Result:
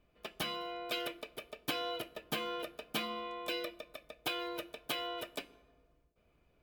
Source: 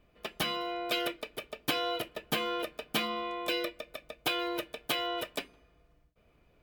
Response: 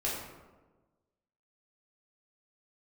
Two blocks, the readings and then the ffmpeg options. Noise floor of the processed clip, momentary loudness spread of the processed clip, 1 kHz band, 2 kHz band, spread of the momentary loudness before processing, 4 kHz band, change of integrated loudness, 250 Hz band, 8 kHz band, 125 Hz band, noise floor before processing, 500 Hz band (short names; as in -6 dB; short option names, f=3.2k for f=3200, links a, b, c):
-72 dBFS, 10 LU, -6.0 dB, -6.0 dB, 10 LU, -5.5 dB, -5.5 dB, -6.5 dB, -5.5 dB, -5.5 dB, -67 dBFS, -5.5 dB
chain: -filter_complex "[0:a]bandreject=f=1.9k:w=23,asplit=2[a][b];[1:a]atrim=start_sample=2205,asetrate=34839,aresample=44100[c];[b][c]afir=irnorm=-1:irlink=0,volume=-24dB[d];[a][d]amix=inputs=2:normalize=0,volume=-6dB"